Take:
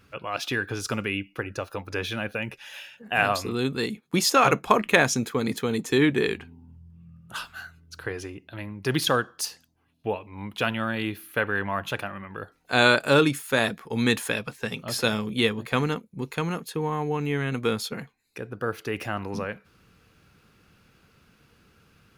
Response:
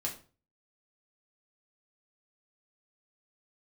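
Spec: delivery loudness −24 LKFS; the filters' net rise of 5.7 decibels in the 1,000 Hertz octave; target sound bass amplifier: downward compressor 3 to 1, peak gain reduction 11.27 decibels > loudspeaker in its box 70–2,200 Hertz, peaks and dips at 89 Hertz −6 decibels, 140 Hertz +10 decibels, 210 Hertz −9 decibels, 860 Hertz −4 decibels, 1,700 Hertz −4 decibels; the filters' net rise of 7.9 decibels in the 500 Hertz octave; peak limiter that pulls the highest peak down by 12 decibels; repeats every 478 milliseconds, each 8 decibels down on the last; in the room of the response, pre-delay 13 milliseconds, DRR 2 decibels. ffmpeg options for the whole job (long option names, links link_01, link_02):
-filter_complex "[0:a]equalizer=frequency=500:width_type=o:gain=8,equalizer=frequency=1000:width_type=o:gain=7.5,alimiter=limit=-8dB:level=0:latency=1,aecho=1:1:478|956|1434|1912|2390:0.398|0.159|0.0637|0.0255|0.0102,asplit=2[link_01][link_02];[1:a]atrim=start_sample=2205,adelay=13[link_03];[link_02][link_03]afir=irnorm=-1:irlink=0,volume=-4dB[link_04];[link_01][link_04]amix=inputs=2:normalize=0,acompressor=threshold=-25dB:ratio=3,highpass=frequency=70:width=0.5412,highpass=frequency=70:width=1.3066,equalizer=frequency=89:width_type=q:width=4:gain=-6,equalizer=frequency=140:width_type=q:width=4:gain=10,equalizer=frequency=210:width_type=q:width=4:gain=-9,equalizer=frequency=860:width_type=q:width=4:gain=-4,equalizer=frequency=1700:width_type=q:width=4:gain=-4,lowpass=frequency=2200:width=0.5412,lowpass=frequency=2200:width=1.3066,volume=5dB"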